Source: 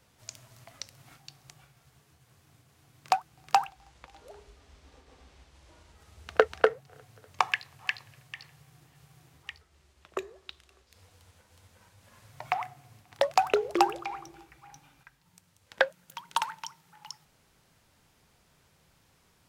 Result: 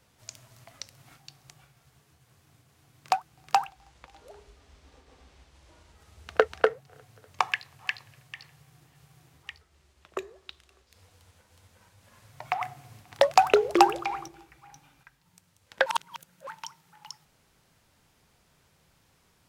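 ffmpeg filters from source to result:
-filter_complex "[0:a]asettb=1/sr,asplit=3[a][b][c];[a]atrim=end=12.614[d];[b]atrim=start=12.61:end=14.28,asetpts=PTS-STARTPTS,afade=t=in:d=0.004:c=qsin,afade=t=out:st=1.666:d=0.004:c=qsin,acontrast=32[e];[c]atrim=start=14.276[f];[d][e]acrossfade=d=0.004:c1=hsin:c2=qsin[g];[g][f]acrossfade=d=0.004:c1=qsin:c2=hsin,asplit=3[h][i][j];[h]atrim=end=15.862[k];[i]atrim=start=15.858:end=16.472,asetpts=PTS-STARTPTS,areverse[l];[j]atrim=start=16.468[m];[k][l]acrossfade=d=0.004:c1=hsin:c2=hsin[n];[n][m]acrossfade=d=0.004:c1=hsin:c2=hsin"

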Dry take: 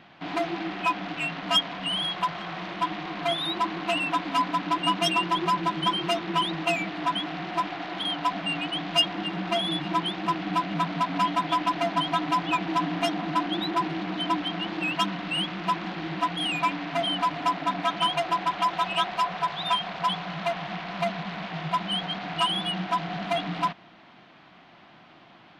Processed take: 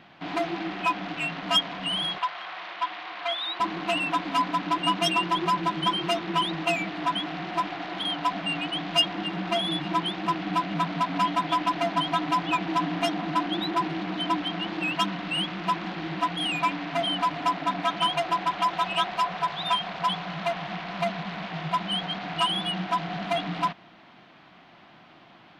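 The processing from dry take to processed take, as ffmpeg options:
-filter_complex "[0:a]asettb=1/sr,asplit=3[a][b][c];[a]atrim=end=2.184[d];[b]atrim=start=2.18:end=3.6,asetpts=PTS-STARTPTS,afade=t=in:d=0.004:c=qsin,afade=t=out:st=1.416:d=0.004:c=qsin,highpass=770,lowpass=4.9k[e];[c]atrim=start=3.596[f];[d][e]acrossfade=d=0.004:c1=hsin:c2=qsin[g];[g][f]acrossfade=d=0.004:c1=qsin:c2=hsin"

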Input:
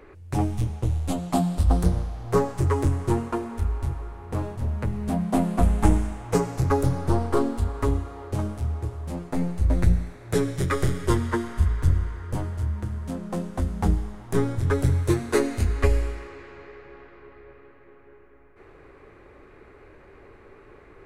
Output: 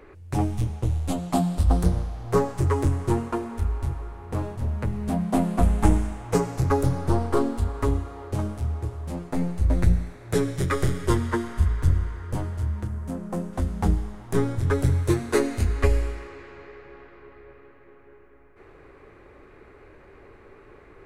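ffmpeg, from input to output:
-filter_complex "[0:a]asettb=1/sr,asplit=3[a][b][c];[a]atrim=end=12.874[d];[b]atrim=start=12.87:end=13.53,asetpts=PTS-STARTPTS,afade=t=in:d=0.004:c=qsin,afade=t=out:st=0.656:d=0.004:c=qsin,equalizer=f=3.7k:t=o:w=1.4:g=-7.5[e];[c]atrim=start=13.526[f];[d][e]acrossfade=d=0.004:c1=hsin:c2=qsin[g];[g][f]acrossfade=d=0.004:c1=qsin:c2=hsin"

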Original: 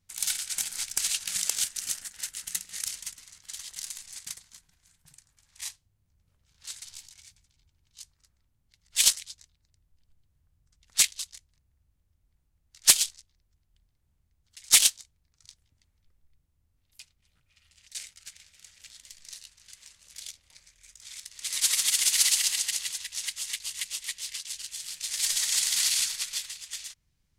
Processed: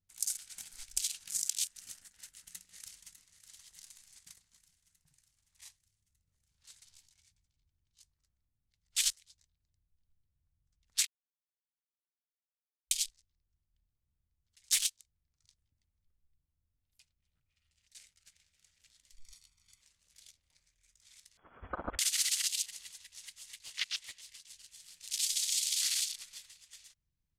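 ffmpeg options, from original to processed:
-filter_complex "[0:a]asplit=2[a][b];[b]afade=t=in:st=2.21:d=0.01,afade=t=out:st=3.39:d=0.01,aecho=0:1:600|1200|1800|2400|3000|3600|4200:0.251189|0.150713|0.0904279|0.0542567|0.032554|0.0195324|0.0117195[c];[a][c]amix=inputs=2:normalize=0,asettb=1/sr,asplit=3[d][e][f];[d]atrim=end=19.174[g];[e]atrim=start=19.17:end=19.81,asetpts=PTS-STARTPTS,afade=t=in:d=0.004:c=qsin,afade=t=out:st=0.636:d=0.004:c=qsin,aecho=1:1:0.9:0.78,atrim=end_sample=28224[h];[f]atrim=start=19.806[i];[g][h]acrossfade=d=0.004:c1=hsin:c2=qsin[j];[j][i]acrossfade=d=0.004:c1=qsin:c2=hsin,asettb=1/sr,asplit=3[k][l][m];[k]atrim=end=21.374[n];[l]atrim=start=21.37:end=21.99,asetpts=PTS-STARTPTS,afade=t=in:d=0.004:c=qsin,afade=t=out:st=0.616:d=0.004:c=qsin,lowpass=f=2.9k:t=q:w=0.5098,lowpass=f=2.9k:t=q:w=0.6013,lowpass=f=2.9k:t=q:w=0.9,lowpass=f=2.9k:t=q:w=2.563,afreqshift=-3400[o];[m]atrim=start=21.986[p];[n][o]acrossfade=d=0.004:c1=hsin:c2=qsin[q];[q][p]acrossfade=d=0.004:c1=qsin:c2=hsin,asplit=3[r][s][t];[r]afade=t=out:st=23.62:d=0.02[u];[s]asplit=2[v][w];[w]highpass=f=720:p=1,volume=13dB,asoftclip=type=tanh:threshold=-17dB[x];[v][x]amix=inputs=2:normalize=0,lowpass=f=5.1k:p=1,volume=-6dB,afade=t=in:st=23.62:d=0.02,afade=t=out:st=24.2:d=0.02[y];[t]afade=t=in:st=24.2:d=0.02[z];[u][y][z]amix=inputs=3:normalize=0,asplit=3[aa][ab][ac];[aa]atrim=end=11.07,asetpts=PTS-STARTPTS,afade=t=out:st=11.066:d=0.004:c=hsin[ad];[ab]atrim=start=11.07:end=12.91,asetpts=PTS-STARTPTS,volume=0[ae];[ac]atrim=start=12.91,asetpts=PTS-STARTPTS,afade=t=in:d=0.004:c=hsin[af];[ad][ae][af]concat=n=3:v=0:a=1,afwtdn=0.0224,lowshelf=f=410:g=6,acompressor=threshold=-30dB:ratio=3"

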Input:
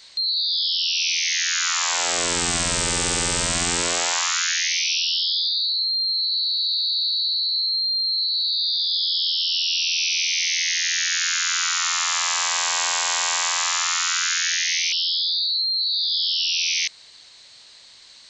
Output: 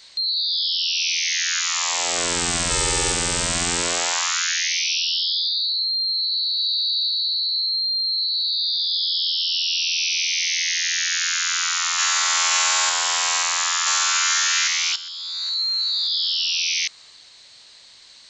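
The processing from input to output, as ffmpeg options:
-filter_complex "[0:a]asettb=1/sr,asplit=3[a][b][c];[a]atrim=end=1.604[d];[b]atrim=start=1.6:end=2.16,asetpts=PTS-STARTPTS,afade=t=in:d=0.004:c=qsin,afade=t=out:st=0.556:d=0.004:c=qsin,equalizer=f=1.5k:t=o:w=0.22:g=-12[e];[c]atrim=start=2.156[f];[d][e]acrossfade=d=0.004:c1=hsin:c2=qsin[g];[g][f]acrossfade=d=0.004:c1=qsin:c2=hsin,asettb=1/sr,asplit=3[h][i][j];[h]atrim=end=2.704[k];[i]atrim=start=2.7:end=3.12,asetpts=PTS-STARTPTS,afade=t=in:d=0.004:c=qsin,afade=t=out:st=0.416:d=0.004:c=qsin,aecho=1:1:2.3:0.62,atrim=end_sample=18522[l];[j]atrim=start=3.116[m];[k][l]acrossfade=d=0.004:c1=hsin:c2=qsin[n];[n][m]acrossfade=d=0.004:c1=qsin:c2=hsin,asettb=1/sr,asplit=3[o][p][q];[o]atrim=end=6.564[r];[p]atrim=start=6.56:end=7.08,asetpts=PTS-STARTPTS,afade=t=in:d=0.004:c=qsin,afade=t=out:st=0.516:d=0.004:c=qsin,asplit=2[s][t];[t]adelay=13,volume=-12.5dB[u];[s][u]amix=inputs=2:normalize=0,atrim=end_sample=22932[v];[q]atrim=start=7.076[w];[r][v]acrossfade=d=0.004:c1=hsin:c2=qsin[x];[x][w]acrossfade=d=0.004:c1=qsin:c2=hsin,asplit=2[y][z];[z]afade=t=in:st=11.45:d=0.01,afade=t=out:st=12.36:d=0.01,aecho=0:1:530|1060|1590|2120|2650|3180|3710|4240|4770:0.944061|0.566437|0.339862|0.203917|0.12235|0.0734102|0.0440461|0.0264277|0.0158566[aa];[y][aa]amix=inputs=2:normalize=0,asplit=2[ab][ac];[ac]afade=t=in:st=13.45:d=0.01,afade=t=out:st=14.26:d=0.01,aecho=0:1:410|820|1230|1640|2050:0.841395|0.294488|0.103071|0.0360748|0.0126262[ad];[ab][ad]amix=inputs=2:normalize=0,asplit=2[ae][af];[ae]atrim=end=14.96,asetpts=PTS-STARTPTS,afade=t=out:st=14.956:d=0.004:c=hsin:silence=0.237137[ag];[af]atrim=start=14.96,asetpts=PTS-STARTPTS,afade=t=in:d=0.66:c=qua:silence=0.237137[ah];[ag][ah]concat=n=2:v=0:a=1"

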